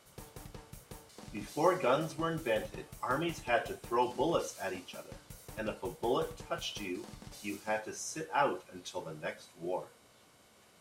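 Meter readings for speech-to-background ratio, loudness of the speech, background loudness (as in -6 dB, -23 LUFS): 16.0 dB, -35.5 LUFS, -51.5 LUFS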